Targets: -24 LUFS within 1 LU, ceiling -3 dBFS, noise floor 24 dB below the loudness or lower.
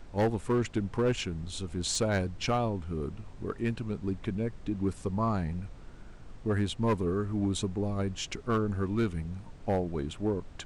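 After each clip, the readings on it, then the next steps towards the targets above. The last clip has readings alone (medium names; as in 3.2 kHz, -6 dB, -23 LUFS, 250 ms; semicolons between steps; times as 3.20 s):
clipped samples 1.2%; clipping level -21.5 dBFS; noise floor -47 dBFS; noise floor target -56 dBFS; loudness -32.0 LUFS; peak level -21.5 dBFS; loudness target -24.0 LUFS
-> clip repair -21.5 dBFS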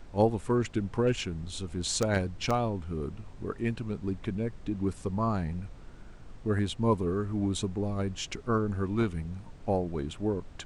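clipped samples 0.0%; noise floor -47 dBFS; noise floor target -56 dBFS
-> noise print and reduce 9 dB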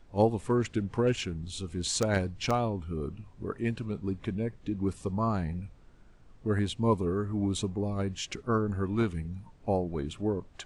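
noise floor -55 dBFS; noise floor target -56 dBFS
-> noise print and reduce 6 dB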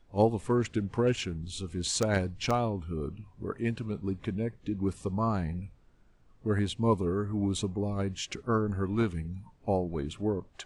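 noise floor -61 dBFS; loudness -31.5 LUFS; peak level -12.5 dBFS; loudness target -24.0 LUFS
-> trim +7.5 dB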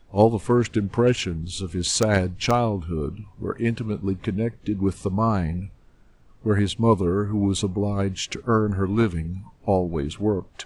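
loudness -24.0 LUFS; peak level -5.0 dBFS; noise floor -53 dBFS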